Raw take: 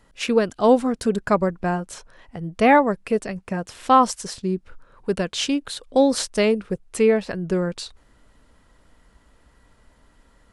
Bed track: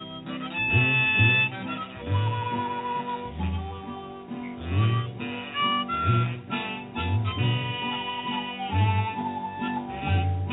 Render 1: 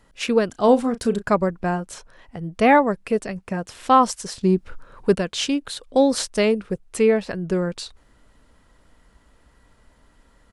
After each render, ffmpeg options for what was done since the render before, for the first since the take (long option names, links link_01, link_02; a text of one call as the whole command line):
ffmpeg -i in.wav -filter_complex "[0:a]asplit=3[link_01][link_02][link_03];[link_01]afade=type=out:start_time=0.52:duration=0.02[link_04];[link_02]asplit=2[link_05][link_06];[link_06]adelay=34,volume=-13.5dB[link_07];[link_05][link_07]amix=inputs=2:normalize=0,afade=type=in:start_time=0.52:duration=0.02,afade=type=out:start_time=1.22:duration=0.02[link_08];[link_03]afade=type=in:start_time=1.22:duration=0.02[link_09];[link_04][link_08][link_09]amix=inputs=3:normalize=0,asettb=1/sr,asplit=3[link_10][link_11][link_12];[link_10]atrim=end=4.414[link_13];[link_11]atrim=start=4.41:end=5.15,asetpts=PTS-STARTPTS,afade=type=in:duration=0.004:curve=qsin,afade=type=out:start_time=0.736:duration=0.004:curve=qsin,acontrast=64[link_14];[link_12]atrim=start=5.146[link_15];[link_13][link_14]acrossfade=duration=0.004:curve1=hsin:curve2=qsin[link_16];[link_16][link_15]acrossfade=duration=0.004:curve1=qsin:curve2=hsin" out.wav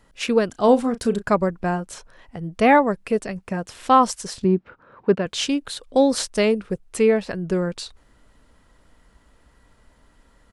ffmpeg -i in.wav -filter_complex "[0:a]asettb=1/sr,asplit=3[link_01][link_02][link_03];[link_01]atrim=end=4.444[link_04];[link_02]atrim=start=4.44:end=5.26,asetpts=PTS-STARTPTS,afade=type=in:duration=0.004:curve=qsin,afade=type=out:start_time=0.816:duration=0.004:curve=qsin,highpass=130,lowpass=2400[link_05];[link_03]atrim=start=5.256[link_06];[link_04][link_05]acrossfade=duration=0.004:curve1=hsin:curve2=qsin[link_07];[link_07][link_06]acrossfade=duration=0.004:curve1=qsin:curve2=hsin" out.wav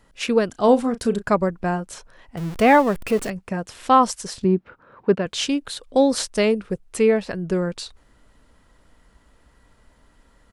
ffmpeg -i in.wav -filter_complex "[0:a]asettb=1/sr,asplit=3[link_01][link_02][link_03];[link_01]atrim=end=2.374[link_04];[link_02]atrim=start=2.37:end=3.3,asetpts=PTS-STARTPTS,afade=type=in:duration=0.004:curve=qsin,afade=type=out:start_time=0.926:duration=0.004:curve=qsin,aeval=exprs='val(0)+0.5*0.0355*sgn(val(0))':channel_layout=same[link_05];[link_03]atrim=start=3.296[link_06];[link_04][link_05]acrossfade=duration=0.004:curve1=hsin:curve2=qsin[link_07];[link_07][link_06]acrossfade=duration=0.004:curve1=qsin:curve2=hsin" out.wav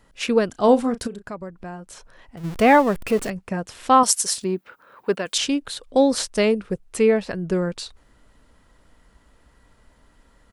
ffmpeg -i in.wav -filter_complex "[0:a]asplit=3[link_01][link_02][link_03];[link_01]afade=type=out:start_time=1.06:duration=0.02[link_04];[link_02]acompressor=threshold=-41dB:ratio=2:attack=3.2:release=140:knee=1:detection=peak,afade=type=in:start_time=1.06:duration=0.02,afade=type=out:start_time=2.43:duration=0.02[link_05];[link_03]afade=type=in:start_time=2.43:duration=0.02[link_06];[link_04][link_05][link_06]amix=inputs=3:normalize=0,asettb=1/sr,asplit=3[link_07][link_08][link_09];[link_07]atrim=end=4.034[link_10];[link_08]atrim=start=4.03:end=5.38,asetpts=PTS-STARTPTS,afade=type=in:duration=0.004:curve=qsin,afade=type=out:start_time=1.346:duration=0.004:curve=qsin,aemphasis=mode=production:type=riaa[link_11];[link_09]atrim=start=5.376[link_12];[link_10][link_11]acrossfade=duration=0.004:curve1=hsin:curve2=qsin[link_13];[link_13][link_12]acrossfade=duration=0.004:curve1=qsin:curve2=hsin" out.wav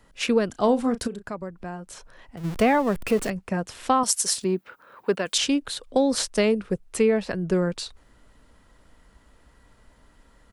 ffmpeg -i in.wav -filter_complex "[0:a]acrossover=split=190[link_01][link_02];[link_02]acompressor=threshold=-17dB:ratio=6[link_03];[link_01][link_03]amix=inputs=2:normalize=0" out.wav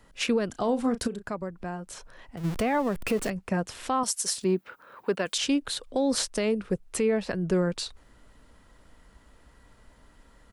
ffmpeg -i in.wav -af "alimiter=limit=-16.5dB:level=0:latency=1:release=173" out.wav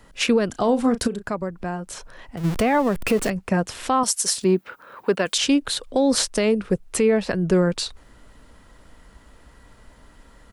ffmpeg -i in.wav -af "volume=6.5dB" out.wav